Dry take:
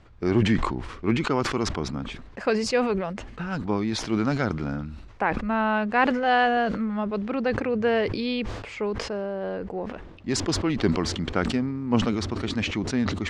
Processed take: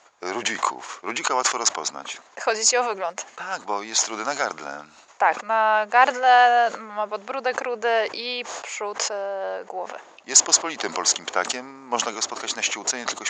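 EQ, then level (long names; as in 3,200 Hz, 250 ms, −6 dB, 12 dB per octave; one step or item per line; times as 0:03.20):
high-pass with resonance 730 Hz, resonance Q 1.7
low-pass with resonance 6,800 Hz, resonance Q 11
+2.5 dB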